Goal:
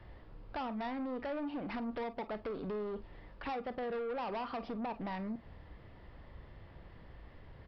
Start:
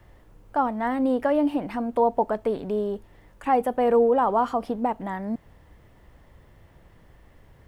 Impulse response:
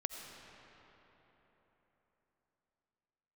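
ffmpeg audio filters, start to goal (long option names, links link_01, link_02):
-filter_complex "[0:a]acompressor=threshold=-28dB:ratio=12,aresample=11025,asoftclip=type=tanh:threshold=-34.5dB,aresample=44100[link_01];[1:a]atrim=start_sample=2205,afade=type=out:start_time=0.15:duration=0.01,atrim=end_sample=7056,asetrate=83790,aresample=44100[link_02];[link_01][link_02]afir=irnorm=-1:irlink=0,volume=6.5dB"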